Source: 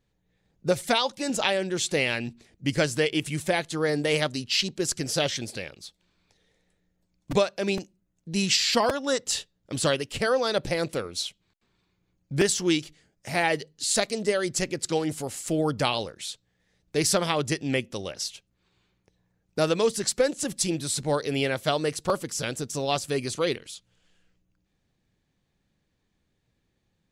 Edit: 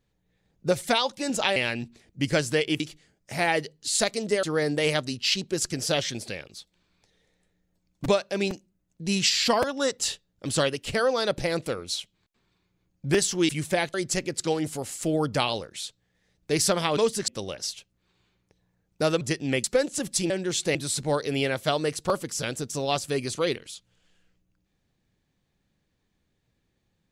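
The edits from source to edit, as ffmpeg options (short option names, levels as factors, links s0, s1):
-filter_complex "[0:a]asplit=12[s0][s1][s2][s3][s4][s5][s6][s7][s8][s9][s10][s11];[s0]atrim=end=1.562[s12];[s1]atrim=start=2.008:end=3.252[s13];[s2]atrim=start=12.758:end=14.392[s14];[s3]atrim=start=3.698:end=12.762[s15];[s4]atrim=start=3.248:end=3.702[s16];[s5]atrim=start=14.388:end=17.422[s17];[s6]atrim=start=19.778:end=20.092[s18];[s7]atrim=start=17.848:end=19.782[s19];[s8]atrim=start=17.418:end=17.852[s20];[s9]atrim=start=20.088:end=20.752[s21];[s10]atrim=start=1.558:end=2.012[s22];[s11]atrim=start=20.748[s23];[s12][s13]acrossfade=d=0.004:c1=hsin:c2=hsin[s24];[s24][s14]acrossfade=d=0.004:c1=hsin:c2=hsin[s25];[s25][s15]acrossfade=d=0.004:c1=hsin:c2=hsin[s26];[s26][s16]acrossfade=d=0.004:c1=hsin:c2=hsin[s27];[s27][s17]acrossfade=d=0.004:c1=hsin:c2=hsin[s28];[s28][s18]acrossfade=d=0.004:c1=hsin:c2=hsin[s29];[s29][s19]acrossfade=d=0.004:c1=hsin:c2=hsin[s30];[s30][s20]acrossfade=d=0.004:c1=hsin:c2=hsin[s31];[s31][s21]acrossfade=d=0.004:c1=hsin:c2=hsin[s32];[s32][s22]acrossfade=d=0.004:c1=hsin:c2=hsin[s33];[s33][s23]acrossfade=d=0.004:c1=hsin:c2=hsin"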